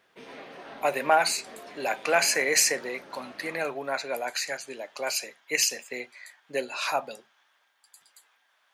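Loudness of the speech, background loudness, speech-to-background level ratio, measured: −27.0 LKFS, −45.0 LKFS, 18.0 dB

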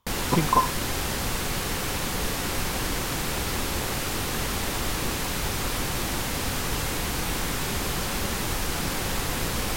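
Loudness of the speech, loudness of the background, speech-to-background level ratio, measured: −25.5 LKFS, −27.5 LKFS, 2.0 dB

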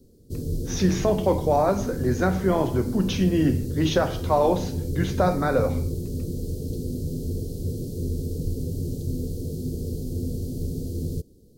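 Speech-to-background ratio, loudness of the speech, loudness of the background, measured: 6.5 dB, −24.0 LKFS, −30.5 LKFS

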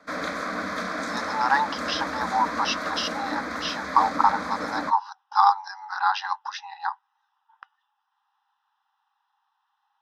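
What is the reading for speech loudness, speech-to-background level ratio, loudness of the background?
−25.5 LKFS, 5.0 dB, −30.5 LKFS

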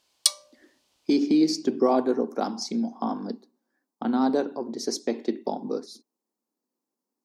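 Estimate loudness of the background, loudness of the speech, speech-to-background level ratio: −24.5 LKFS, −26.5 LKFS, −2.0 dB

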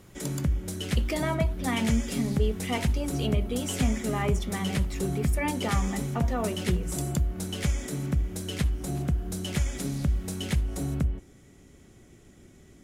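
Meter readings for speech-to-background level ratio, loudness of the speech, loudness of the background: −2.0 dB, −32.5 LKFS, −30.5 LKFS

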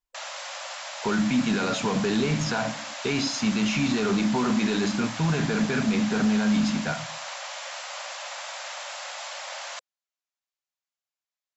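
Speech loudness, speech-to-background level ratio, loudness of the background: −25.5 LKFS, 9.5 dB, −35.0 LKFS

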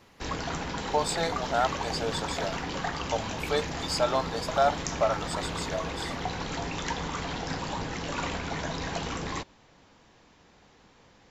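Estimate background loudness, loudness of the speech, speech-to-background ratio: −33.5 LKFS, −30.5 LKFS, 3.0 dB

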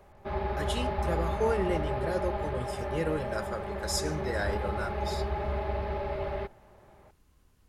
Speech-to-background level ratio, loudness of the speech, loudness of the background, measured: −1.0 dB, −34.5 LKFS, −33.5 LKFS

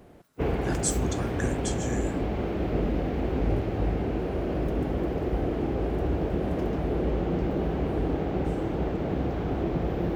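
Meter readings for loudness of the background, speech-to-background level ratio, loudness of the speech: −29.0 LKFS, −5.0 dB, −34.0 LKFS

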